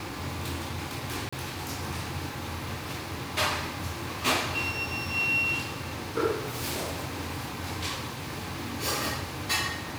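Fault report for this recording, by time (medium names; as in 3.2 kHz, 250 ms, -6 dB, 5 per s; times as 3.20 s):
1.29–1.32 s: dropout 35 ms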